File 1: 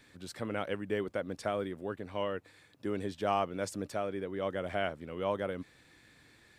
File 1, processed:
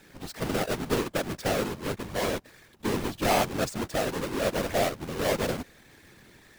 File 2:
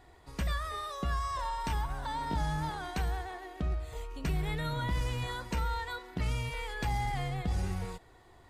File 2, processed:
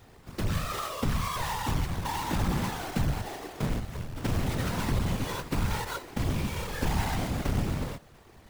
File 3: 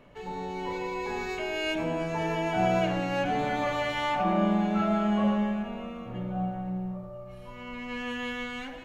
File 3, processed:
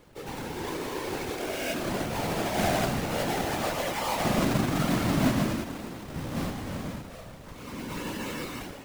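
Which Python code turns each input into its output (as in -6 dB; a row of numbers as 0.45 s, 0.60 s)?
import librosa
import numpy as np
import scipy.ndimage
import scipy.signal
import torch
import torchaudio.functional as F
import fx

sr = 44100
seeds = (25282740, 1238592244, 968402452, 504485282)

y = fx.halfwave_hold(x, sr)
y = fx.whisperise(y, sr, seeds[0])
y = y * 10.0 ** (-30 / 20.0) / np.sqrt(np.mean(np.square(y)))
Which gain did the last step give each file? +2.0 dB, -0.5 dB, -5.0 dB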